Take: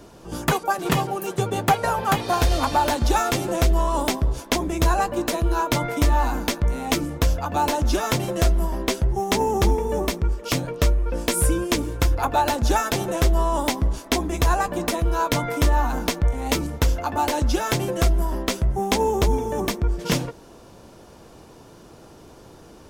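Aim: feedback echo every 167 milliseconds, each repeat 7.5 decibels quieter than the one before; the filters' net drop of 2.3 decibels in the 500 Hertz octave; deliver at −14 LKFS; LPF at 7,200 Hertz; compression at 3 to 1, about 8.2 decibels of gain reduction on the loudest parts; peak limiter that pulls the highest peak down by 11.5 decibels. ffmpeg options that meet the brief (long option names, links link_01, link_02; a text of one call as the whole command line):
ffmpeg -i in.wav -af "lowpass=7200,equalizer=frequency=500:width_type=o:gain=-3,acompressor=threshold=-26dB:ratio=3,alimiter=limit=-23dB:level=0:latency=1,aecho=1:1:167|334|501|668|835:0.422|0.177|0.0744|0.0312|0.0131,volume=17.5dB" out.wav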